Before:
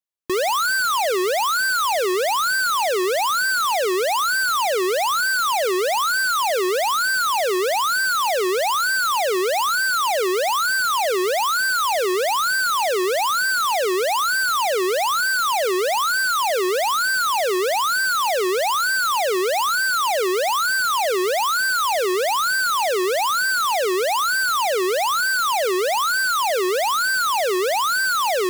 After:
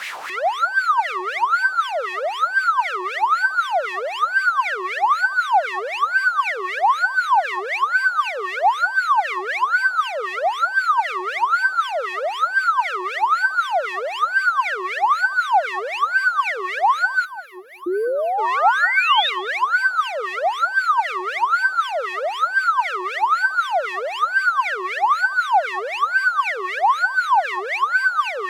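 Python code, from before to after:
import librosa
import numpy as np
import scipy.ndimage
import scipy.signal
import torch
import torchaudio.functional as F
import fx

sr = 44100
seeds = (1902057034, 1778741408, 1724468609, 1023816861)

y = np.sign(x) * np.sqrt(np.mean(np.square(x)))
y = fx.spec_box(y, sr, start_s=17.25, length_s=1.13, low_hz=370.0, high_hz=9900.0, gain_db=-19)
y = fx.wah_lfo(y, sr, hz=3.9, low_hz=780.0, high_hz=2300.0, q=4.7)
y = fx.spec_paint(y, sr, seeds[0], shape='rise', start_s=17.86, length_s=1.44, low_hz=340.0, high_hz=3900.0, level_db=-30.0)
y = y + 10.0 ** (-17.0 / 20.0) * np.pad(y, (int(206 * sr / 1000.0), 0))[:len(y)]
y = y * librosa.db_to_amplitude(9.0)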